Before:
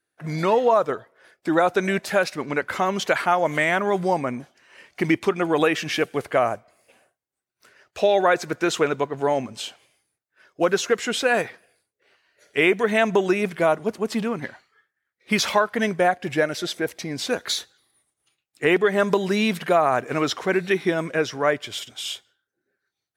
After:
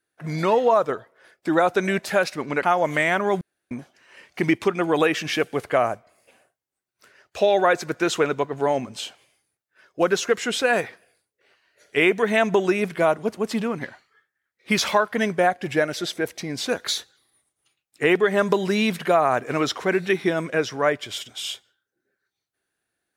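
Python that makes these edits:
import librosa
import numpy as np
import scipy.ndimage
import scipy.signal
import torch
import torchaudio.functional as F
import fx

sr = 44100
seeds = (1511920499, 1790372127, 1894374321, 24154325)

y = fx.edit(x, sr, fx.cut(start_s=2.63, length_s=0.61),
    fx.room_tone_fill(start_s=4.02, length_s=0.3), tone=tone)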